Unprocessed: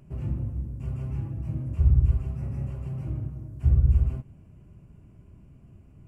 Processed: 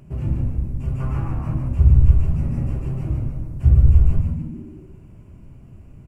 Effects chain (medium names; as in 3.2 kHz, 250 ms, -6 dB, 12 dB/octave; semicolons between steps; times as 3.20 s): 1.00–1.54 s: peaking EQ 1.2 kHz +14.5 dB 1.2 oct; frequency-shifting echo 146 ms, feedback 46%, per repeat -74 Hz, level -4 dB; trim +6.5 dB